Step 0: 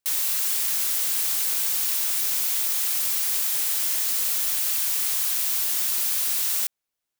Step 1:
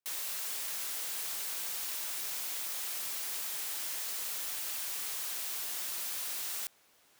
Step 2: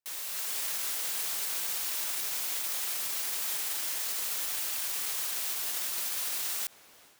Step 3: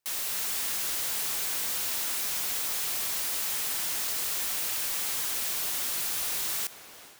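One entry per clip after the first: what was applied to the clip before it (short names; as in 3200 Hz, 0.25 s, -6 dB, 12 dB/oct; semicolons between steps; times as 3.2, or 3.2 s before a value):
tilt -2 dB/oct; reverse; upward compressor, threshold -35 dBFS; reverse; HPF 420 Hz 6 dB/oct; gain -6 dB
AGC gain up to 11.5 dB; limiter -22 dBFS, peak gain reduction 8 dB; gain -1.5 dB
in parallel at -3 dB: wavefolder -35.5 dBFS; on the sum: reverb RT60 0.70 s, pre-delay 3 ms, DRR 18.5 dB; hard clip -32.5 dBFS, distortion -14 dB; gain +3.5 dB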